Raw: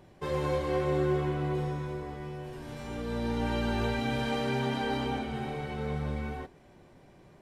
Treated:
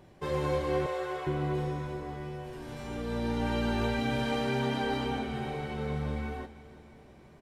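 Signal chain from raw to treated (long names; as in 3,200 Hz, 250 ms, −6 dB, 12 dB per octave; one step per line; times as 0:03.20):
0:00.86–0:01.27: high-pass filter 490 Hz 24 dB per octave
repeating echo 331 ms, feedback 59%, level −17.5 dB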